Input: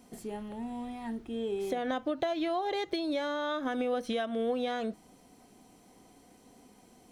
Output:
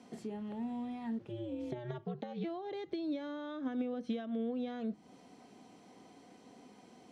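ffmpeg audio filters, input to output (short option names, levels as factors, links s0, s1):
-filter_complex "[0:a]asplit=3[s0][s1][s2];[s0]afade=t=out:st=1.18:d=0.02[s3];[s1]aeval=exprs='val(0)*sin(2*PI*120*n/s)':c=same,afade=t=in:st=1.18:d=0.02,afade=t=out:st=2.43:d=0.02[s4];[s2]afade=t=in:st=2.43:d=0.02[s5];[s3][s4][s5]amix=inputs=3:normalize=0,acrossover=split=300[s6][s7];[s7]acompressor=threshold=0.00355:ratio=4[s8];[s6][s8]amix=inputs=2:normalize=0,highpass=130,lowpass=5300,volume=1.19"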